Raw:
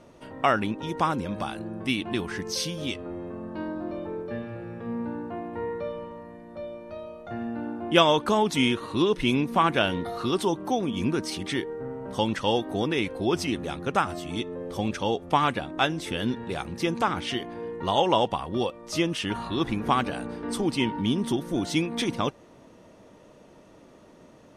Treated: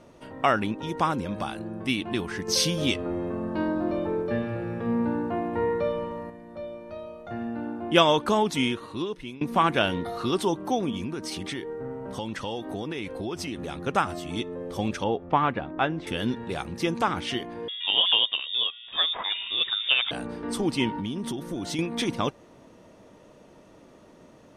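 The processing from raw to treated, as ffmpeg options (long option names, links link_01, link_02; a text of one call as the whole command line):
ffmpeg -i in.wav -filter_complex "[0:a]asettb=1/sr,asplit=3[link_01][link_02][link_03];[link_01]atrim=end=10.964[link_04];[link_02]atrim=start=10.96:end=13.82,asetpts=PTS-STARTPTS,afade=type=in:duration=0.004:curve=qsin,afade=type=out:start_time=2.856:duration=0.004:curve=qsin,acompressor=threshold=-29dB:ratio=4:attack=3.2:release=140:knee=1:detection=peak[link_05];[link_03]atrim=start=13.816[link_06];[link_04][link_05]acrossfade=duration=0.004:curve1=hsin:curve2=qsin[link_07];[link_07][link_06]acrossfade=duration=0.004:curve1=qsin:curve2=hsin,asettb=1/sr,asplit=3[link_08][link_09][link_10];[link_08]atrim=end=15.044[link_11];[link_09]atrim=start=15.04:end=16.07,asetpts=PTS-STARTPTS,afade=type=in:duration=0.004:curve=qsin,afade=type=out:start_time=1.026:duration=0.004:curve=qsin,lowpass=2100[link_12];[link_10]atrim=start=16.066[link_13];[link_11][link_12]acrossfade=duration=0.004:curve1=hsin:curve2=qsin[link_14];[link_14][link_13]acrossfade=duration=0.004:curve1=qsin:curve2=hsin,asettb=1/sr,asplit=3[link_15][link_16][link_17];[link_15]atrim=end=17.684[link_18];[link_16]atrim=start=17.68:end=20.11,asetpts=PTS-STARTPTS,afade=type=in:duration=0.004:curve=qsin,afade=type=out:start_time=2.426:duration=0.004:curve=qsin,lowpass=frequency=3200:width_type=q:width=0.5098,lowpass=frequency=3200:width_type=q:width=0.6013,lowpass=frequency=3200:width_type=q:width=0.9,lowpass=frequency=3200:width_type=q:width=2.563,afreqshift=-3800[link_19];[link_17]atrim=start=20.106[link_20];[link_18][link_19]acrossfade=duration=0.004:curve1=hsin:curve2=qsin[link_21];[link_21][link_20]acrossfade=duration=0.004:curve1=qsin:curve2=hsin,asettb=1/sr,asplit=3[link_22][link_23][link_24];[link_22]atrim=end=20.964[link_25];[link_23]atrim=start=20.96:end=21.79,asetpts=PTS-STARTPTS,afade=type=in:duration=0.004:curve=qsin,afade=type=out:start_time=0.826:duration=0.004:curve=qsin,acompressor=threshold=-27dB:ratio=6:attack=3.2:release=140:knee=1:detection=peak[link_26];[link_24]atrim=start=21.786[link_27];[link_25][link_26]acrossfade=duration=0.004:curve1=hsin:curve2=qsin[link_28];[link_28][link_27]acrossfade=duration=0.004:curve1=qsin:curve2=hsin,asplit=4[link_29][link_30][link_31][link_32];[link_29]atrim=end=2.482[link_33];[link_30]atrim=start=2.478:end=6.302,asetpts=PTS-STARTPTS,volume=6dB[link_34];[link_31]atrim=start=6.298:end=9.41,asetpts=PTS-STARTPTS,afade=type=out:start_time=2.062:duration=1.05:silence=0.0749894[link_35];[link_32]atrim=start=9.41,asetpts=PTS-STARTPTS,afade=type=in:duration=0.004:curve=hsin:silence=0.0749894[link_36];[link_33][link_34]acrossfade=duration=0.004:curve1=hsin:curve2=hsin[link_37];[link_35][link_36]concat=n=2:v=0:a=1[link_38];[link_37][link_38]acrossfade=duration=0.004:curve1=hsin:curve2=hsin" out.wav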